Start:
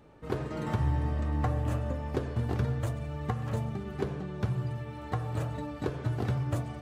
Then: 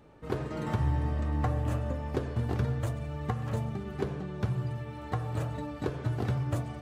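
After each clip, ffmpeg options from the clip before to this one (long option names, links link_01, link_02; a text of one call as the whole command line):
ffmpeg -i in.wav -af anull out.wav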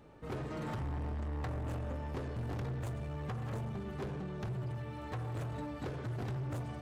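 ffmpeg -i in.wav -af "asoftclip=type=tanh:threshold=-34dB,volume=-1dB" out.wav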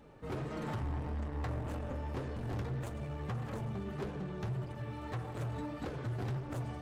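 ffmpeg -i in.wav -af "flanger=delay=3.7:depth=7.4:regen=-39:speed=1.7:shape=sinusoidal,volume=4.5dB" out.wav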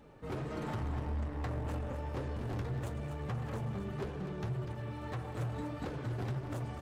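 ffmpeg -i in.wav -af "aecho=1:1:247:0.355" out.wav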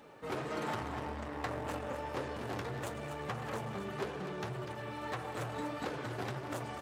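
ffmpeg -i in.wav -af "highpass=frequency=550:poles=1,volume=6.5dB" out.wav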